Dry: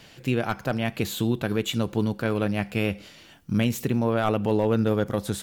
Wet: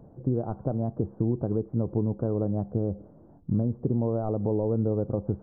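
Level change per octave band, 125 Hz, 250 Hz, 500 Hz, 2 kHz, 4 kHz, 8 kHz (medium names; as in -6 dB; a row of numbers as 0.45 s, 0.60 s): 0.0 dB, -3.0 dB, -3.0 dB, under -30 dB, under -40 dB, under -40 dB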